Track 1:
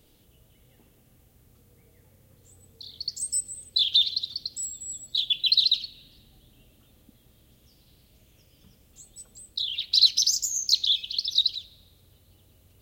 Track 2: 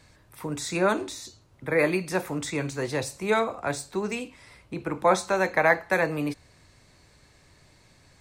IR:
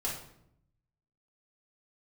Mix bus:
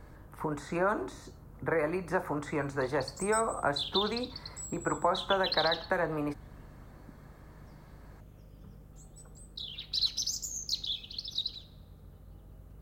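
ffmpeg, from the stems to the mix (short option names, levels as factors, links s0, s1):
-filter_complex "[0:a]aeval=exprs='val(0)+0.00141*(sin(2*PI*50*n/s)+sin(2*PI*2*50*n/s)/2+sin(2*PI*3*50*n/s)/3+sin(2*PI*4*50*n/s)/4+sin(2*PI*5*50*n/s)/5)':c=same,volume=1.33,asplit=2[s0][s1];[s1]volume=0.2[s2];[1:a]alimiter=limit=0.168:level=0:latency=1:release=306,acrossover=split=510|4000[s3][s4][s5];[s3]acompressor=threshold=0.0141:ratio=4[s6];[s4]acompressor=threshold=0.0316:ratio=4[s7];[s5]acompressor=threshold=0.00891:ratio=4[s8];[s6][s7][s8]amix=inputs=3:normalize=0,volume=1.26[s9];[2:a]atrim=start_sample=2205[s10];[s2][s10]afir=irnorm=-1:irlink=0[s11];[s0][s9][s11]amix=inputs=3:normalize=0,highshelf=f=2000:t=q:w=1.5:g=-13"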